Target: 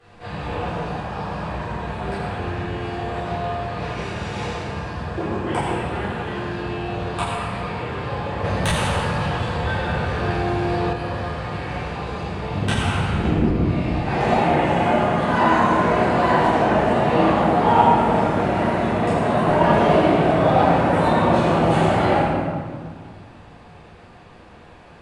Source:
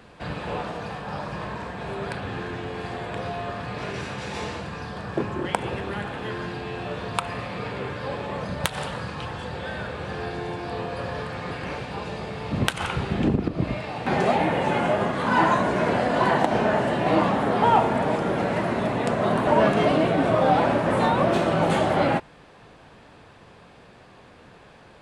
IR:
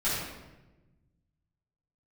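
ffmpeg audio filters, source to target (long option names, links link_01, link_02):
-filter_complex "[1:a]atrim=start_sample=2205,asetrate=23373,aresample=44100[link_01];[0:a][link_01]afir=irnorm=-1:irlink=0,asettb=1/sr,asplit=3[link_02][link_03][link_04];[link_02]atrim=end=8.444[link_05];[link_03]atrim=start=8.44:end=10.93,asetpts=PTS-STARTPTS,afade=type=in:duration=0.004:curve=qsin,afade=type=out:start_time=2.486:duration=0.004:curve=qsin,acontrast=34[link_06];[link_04]atrim=start=10.926[link_07];[link_05][link_06]acrossfade=duration=0.004:curve1=hsin:curve2=qsin[link_08];[link_08][link_07]acrossfade=duration=0.004:curve1=qsin:curve2=hsin,volume=-11.5dB"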